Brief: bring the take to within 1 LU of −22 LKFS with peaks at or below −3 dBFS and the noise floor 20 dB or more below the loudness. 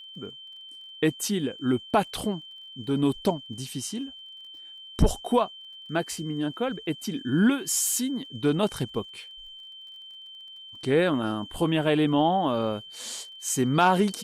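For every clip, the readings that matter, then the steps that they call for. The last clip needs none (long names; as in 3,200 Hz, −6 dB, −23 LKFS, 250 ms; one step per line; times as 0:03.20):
crackle rate 35 per second; interfering tone 3,100 Hz; level of the tone −42 dBFS; integrated loudness −26.5 LKFS; sample peak −11.0 dBFS; target loudness −22.0 LKFS
→ click removal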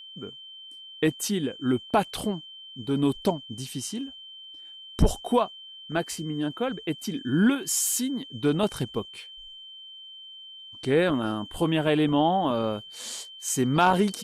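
crackle rate 0.070 per second; interfering tone 3,100 Hz; level of the tone −42 dBFS
→ notch filter 3,100 Hz, Q 30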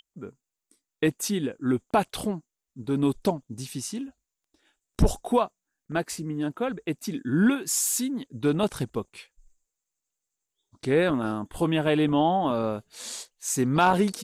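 interfering tone none found; integrated loudness −26.5 LKFS; sample peak −9.5 dBFS; target loudness −22.0 LKFS
→ level +4.5 dB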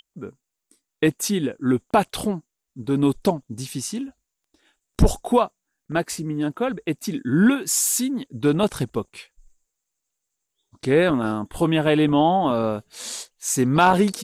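integrated loudness −22.0 LKFS; sample peak −5.0 dBFS; background noise floor −82 dBFS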